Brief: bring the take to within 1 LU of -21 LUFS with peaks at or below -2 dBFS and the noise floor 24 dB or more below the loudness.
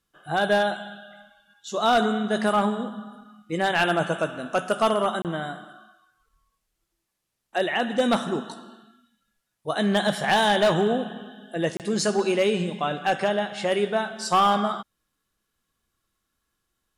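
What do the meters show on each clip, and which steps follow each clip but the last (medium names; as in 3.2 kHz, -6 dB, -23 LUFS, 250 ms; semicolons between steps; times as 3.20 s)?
clipped samples 0.6%; clipping level -14.0 dBFS; dropouts 2; longest dropout 28 ms; loudness -24.0 LUFS; peak level -14.0 dBFS; loudness target -21.0 LUFS
-> clip repair -14 dBFS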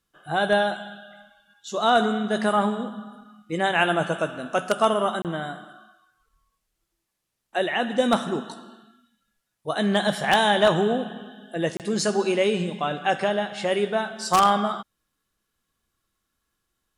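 clipped samples 0.0%; dropouts 2; longest dropout 28 ms
-> interpolate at 5.22/11.77 s, 28 ms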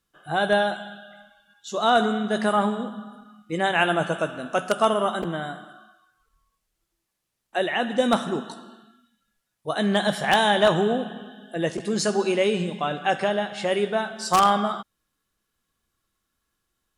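dropouts 0; loudness -23.5 LUFS; peak level -5.0 dBFS; loudness target -21.0 LUFS
-> trim +2.5 dB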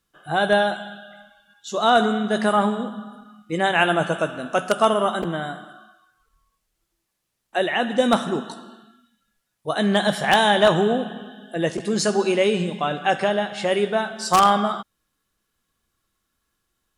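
loudness -21.0 LUFS; peak level -2.5 dBFS; noise floor -77 dBFS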